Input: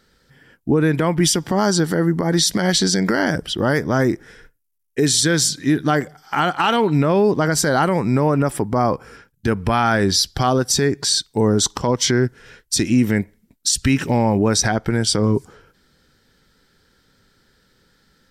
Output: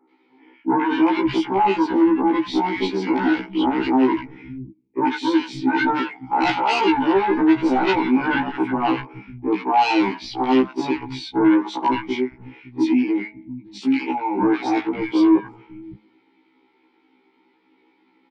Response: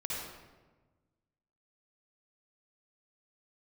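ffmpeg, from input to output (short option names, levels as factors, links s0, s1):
-filter_complex "[0:a]acrossover=split=300 3400:gain=0.0708 1 0.0631[s0][s1][s2];[s0][s1][s2]amix=inputs=3:normalize=0,bandreject=f=214.6:t=h:w=4,bandreject=f=429.2:t=h:w=4,bandreject=f=643.8:t=h:w=4,bandreject=f=858.4:t=h:w=4,bandreject=f=1073:t=h:w=4,asettb=1/sr,asplit=3[s3][s4][s5];[s3]atrim=end=11.914[s6];[s4]atrim=start=11.91:end=14.39,asetpts=PTS-STARTPTS,afade=t=in:d=0.004:c=qsin,afade=t=out:st=2.476:d=0.004:c=qsin,acrossover=split=170[s7][s8];[s8]acompressor=threshold=0.0398:ratio=6[s9];[s7][s9]amix=inputs=2:normalize=0[s10];[s5]atrim=start=14.386[s11];[s6][s10]acrossfade=d=0.004:c1=hsin:c2=qsin[s12];[s12][s11]acrossfade=d=0.004:c1=qsin:c2=hsin,asplit=3[s13][s14][s15];[s13]bandpass=f=300:t=q:w=8,volume=1[s16];[s14]bandpass=f=870:t=q:w=8,volume=0.501[s17];[s15]bandpass=f=2240:t=q:w=8,volume=0.355[s18];[s16][s17][s18]amix=inputs=3:normalize=0,aeval=exprs='0.119*sin(PI/2*3.55*val(0)/0.119)':c=same,acrossover=split=160|1300[s19][s20][s21];[s21]adelay=90[s22];[s19]adelay=560[s23];[s23][s20][s22]amix=inputs=3:normalize=0,afftfilt=real='re*1.73*eq(mod(b,3),0)':imag='im*1.73*eq(mod(b,3),0)':win_size=2048:overlap=0.75,volume=2.37"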